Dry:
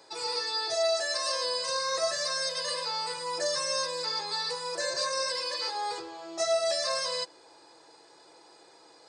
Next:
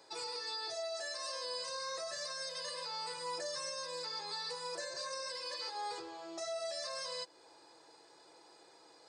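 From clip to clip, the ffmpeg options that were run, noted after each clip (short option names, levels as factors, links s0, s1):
-af "alimiter=level_in=1.41:limit=0.0631:level=0:latency=1:release=200,volume=0.708,volume=0.562"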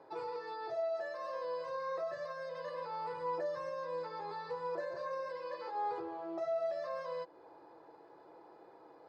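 -af "lowpass=1100,volume=2"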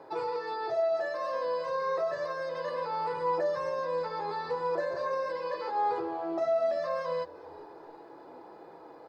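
-filter_complex "[0:a]asplit=5[s0][s1][s2][s3][s4];[s1]adelay=394,afreqshift=-82,volume=0.0891[s5];[s2]adelay=788,afreqshift=-164,volume=0.049[s6];[s3]adelay=1182,afreqshift=-246,volume=0.0269[s7];[s4]adelay=1576,afreqshift=-328,volume=0.0148[s8];[s0][s5][s6][s7][s8]amix=inputs=5:normalize=0,volume=2.51"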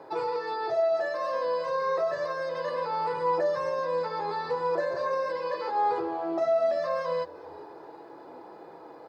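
-af "highpass=58,volume=1.41"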